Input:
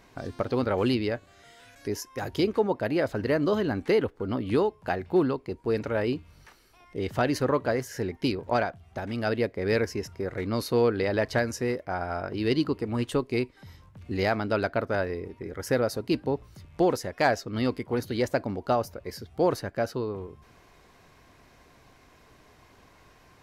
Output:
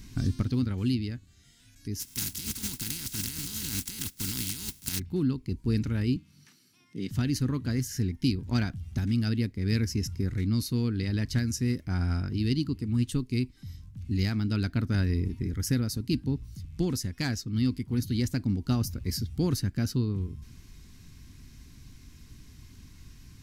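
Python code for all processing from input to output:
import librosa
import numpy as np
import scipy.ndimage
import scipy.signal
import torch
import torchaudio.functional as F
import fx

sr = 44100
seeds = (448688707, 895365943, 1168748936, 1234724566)

y = fx.spec_flatten(x, sr, power=0.23, at=(1.99, 4.98), fade=0.02)
y = fx.notch_comb(y, sr, f0_hz=600.0, at=(1.99, 4.98), fade=0.02)
y = fx.over_compress(y, sr, threshold_db=-32.0, ratio=-1.0, at=(1.99, 4.98), fade=0.02)
y = fx.chain(y, sr, fx.highpass(hz=150.0, slope=24),
    fx.high_shelf(hz=8700.0, db=-6.5), at=(6.16, 7.11))
y = fx.curve_eq(y, sr, hz=(260.0, 580.0, 1300.0, 5600.0), db=(0, -25, -13, 3))
y = fx.rider(y, sr, range_db=10, speed_s=0.5)
y = fx.low_shelf(y, sr, hz=140.0, db=10.5)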